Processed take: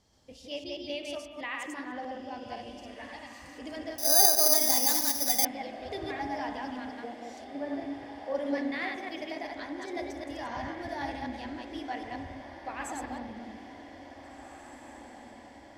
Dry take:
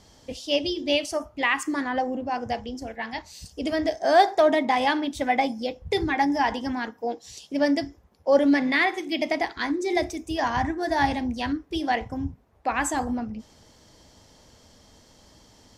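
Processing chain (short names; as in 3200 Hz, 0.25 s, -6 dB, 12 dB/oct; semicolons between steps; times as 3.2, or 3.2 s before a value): reverse delay 0.128 s, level -2 dB; 7.44–8.35 LPF 1500 Hz; diffused feedback echo 1.876 s, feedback 64%, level -11.5 dB; spring tank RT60 1.7 s, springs 43/60 ms, chirp 65 ms, DRR 8 dB; 3.98–5.45 careless resampling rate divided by 8×, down filtered, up zero stuff; gain -14.5 dB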